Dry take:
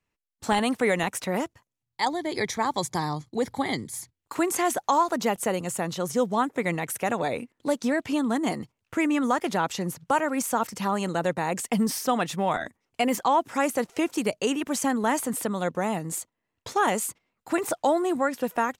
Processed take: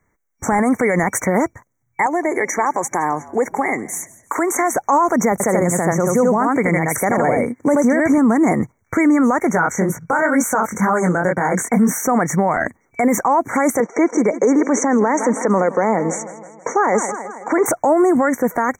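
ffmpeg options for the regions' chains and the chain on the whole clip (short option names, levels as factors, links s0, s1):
-filter_complex "[0:a]asettb=1/sr,asplit=3[s0][s1][s2];[s0]atrim=end=2.064[s3];[s1]atrim=start=2.06:end=4.76,asetpts=PTS-STARTPTS,afade=t=in:d=0.004:c=qsin,afade=t=out:st=2.696:d=0.004:c=qsin,highpass=360,acompressor=threshold=0.0282:ratio=3:attack=3.2:release=140:knee=1:detection=peak,asplit=4[s4][s5][s6][s7];[s5]adelay=169,afreqshift=-53,volume=0.1[s8];[s6]adelay=338,afreqshift=-106,volume=0.0351[s9];[s7]adelay=507,afreqshift=-159,volume=0.0123[s10];[s4][s8][s9][s10]amix=inputs=4:normalize=0,atrim=end_sample=119070[s11];[s2]atrim=start=4.756[s12];[s3][s11]acrossfade=d=0.004:c1=hsin:c2=qsin[s13];[s13][s12]acrossfade=d=0.004:c1=qsin:c2=hsin,asettb=1/sr,asplit=3[s14][s15][s16];[s14]atrim=end=5.324[s17];[s15]atrim=start=5.32:end=8.18,asetpts=PTS-STARTPTS,afade=t=in:d=0.004:c=qsin,afade=t=out:st=2.856:d=0.004:c=qsin,highpass=f=55:w=0.5412,highpass=f=55:w=1.3066,aecho=1:1:80:0.631,atrim=end_sample=126126[s18];[s16]atrim=start=8.176[s19];[s17][s18]acrossfade=d=0.004:c1=hsin:c2=qsin[s20];[s20][s19]acrossfade=d=0.004:c1=qsin:c2=hsin,asettb=1/sr,asplit=3[s21][s22][s23];[s21]atrim=end=9.524[s24];[s22]atrim=start=9.52:end=12.03,asetpts=PTS-STARTPTS,afade=t=in:d=0.004:c=qsin,afade=t=out:st=2.506:d=0.004:c=qsin,equalizer=f=1500:w=7.8:g=9.5,flanger=delay=16.5:depth=7.2:speed=2.1[s25];[s23]atrim=start=12.026[s26];[s24][s25]acrossfade=d=0.004:c1=hsin:c2=qsin[s27];[s27][s26]acrossfade=d=0.004:c1=qsin:c2=hsin,asettb=1/sr,asplit=3[s28][s29][s30];[s28]atrim=end=13.804[s31];[s29]atrim=start=13.8:end=17.66,asetpts=PTS-STARTPTS,afade=t=in:d=0.004:c=qsin,afade=t=out:st=3.856:d=0.004:c=qsin,highpass=f=200:w=0.5412,highpass=f=200:w=1.3066,equalizer=f=480:t=q:w=4:g=6,equalizer=f=960:t=q:w=4:g=3,equalizer=f=4700:t=q:w=4:g=9,lowpass=f=6400:w=0.5412,lowpass=f=6400:w=1.3066,aecho=1:1:162|324|486|648|810:0.119|0.0654|0.036|0.0198|0.0109,atrim=end_sample=170226[s32];[s30]atrim=start=17.656[s33];[s31][s32]acrossfade=d=0.004:c1=hsin:c2=qsin[s34];[s34][s33]acrossfade=d=0.004:c1=qsin:c2=hsin,afftfilt=real='re*(1-between(b*sr/4096,2300,5700))':imag='im*(1-between(b*sr/4096,2300,5700))':win_size=4096:overlap=0.75,equalizer=f=11000:t=o:w=0.82:g=-9,alimiter=level_in=14.1:limit=0.891:release=50:level=0:latency=1,volume=0.473"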